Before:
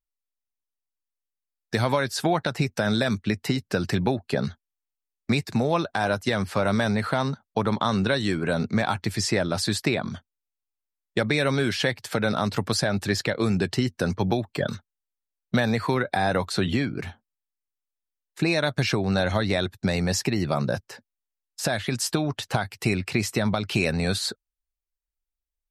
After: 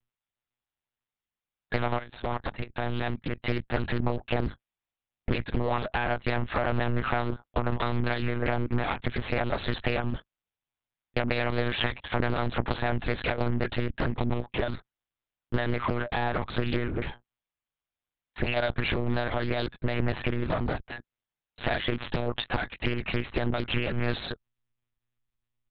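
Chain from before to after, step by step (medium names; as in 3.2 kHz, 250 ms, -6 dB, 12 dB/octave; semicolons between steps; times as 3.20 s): one-sided clip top -33.5 dBFS, bottom -13 dBFS; compression 12:1, threshold -28 dBFS, peak gain reduction 9.5 dB; comb 4.8 ms, depth 55%; monotone LPC vocoder at 8 kHz 120 Hz; 1.97–3.43 s: level held to a coarse grid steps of 17 dB; loudspeaker Doppler distortion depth 0.85 ms; trim +5 dB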